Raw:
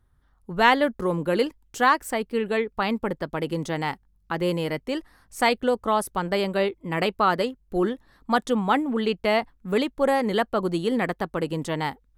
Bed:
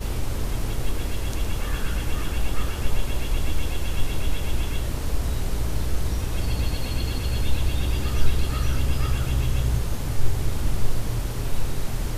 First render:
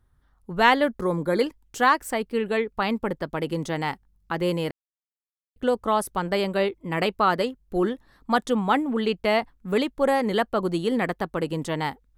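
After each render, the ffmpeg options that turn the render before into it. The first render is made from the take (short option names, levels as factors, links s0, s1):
-filter_complex "[0:a]asettb=1/sr,asplit=3[s0][s1][s2];[s0]atrim=end=1.014[s3];[s1]atrim=start=1.01:end=1.41,asetpts=PTS-STARTPTS,afade=t=in:d=0.004:c=qsin,afade=t=out:st=0.396:d=0.004:c=qsin,asuperstop=centerf=2800:order=20:qfactor=3.8[s4];[s2]atrim=start=1.406[s5];[s3][s4]acrossfade=d=0.004:c1=hsin:c2=qsin[s6];[s6][s5]acrossfade=d=0.004:c1=qsin:c2=hsin,asplit=3[s7][s8][s9];[s7]atrim=end=4.71,asetpts=PTS-STARTPTS,afade=t=out:st=4.706:d=0.004:c=hsin[s10];[s8]atrim=start=4.71:end=5.56,asetpts=PTS-STARTPTS,volume=0[s11];[s9]atrim=start=5.56,asetpts=PTS-STARTPTS,afade=t=in:d=0.004:c=hsin[s12];[s10][s11][s12]concat=n=3:v=0:a=1"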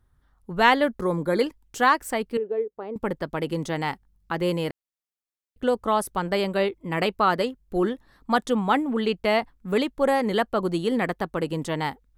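-filter_complex "[0:a]asettb=1/sr,asplit=3[s0][s1][s2];[s0]atrim=end=2.374[s3];[s1]atrim=start=2.37:end=2.96,asetpts=PTS-STARTPTS,afade=t=in:d=0.004:c=qsin,afade=t=out:st=0.586:d=0.004:c=qsin,bandpass=f=440:t=q:w=3.1[s4];[s2]atrim=start=2.956[s5];[s3][s4]acrossfade=d=0.004:c1=hsin:c2=qsin[s6];[s6][s5]acrossfade=d=0.004:c1=qsin:c2=hsin"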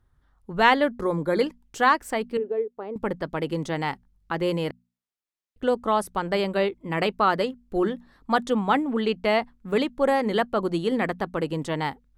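-af "highshelf=f=9800:g=-9.5,bandreject=f=60:t=h:w=6,bandreject=f=120:t=h:w=6,bandreject=f=180:t=h:w=6,bandreject=f=240:t=h:w=6"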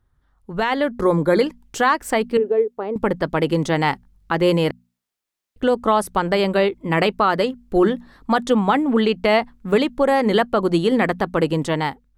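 -af "alimiter=limit=0.168:level=0:latency=1:release=184,dynaudnorm=f=260:g=5:m=2.66"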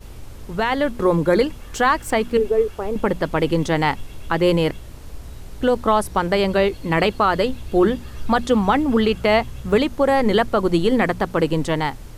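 -filter_complex "[1:a]volume=0.282[s0];[0:a][s0]amix=inputs=2:normalize=0"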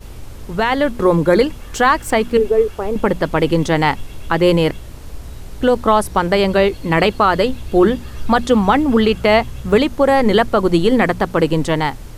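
-af "volume=1.58"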